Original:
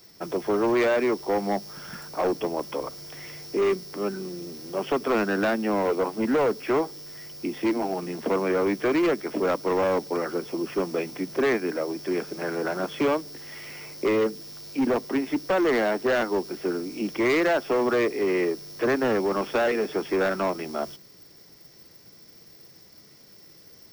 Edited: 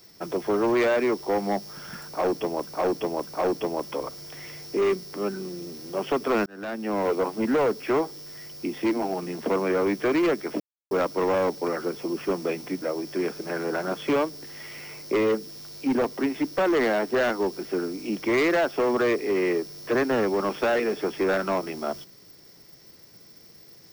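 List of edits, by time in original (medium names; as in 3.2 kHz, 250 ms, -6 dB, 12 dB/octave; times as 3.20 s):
2.07–2.67 s: loop, 3 plays
5.26–5.88 s: fade in
9.40 s: insert silence 0.31 s
11.31–11.74 s: delete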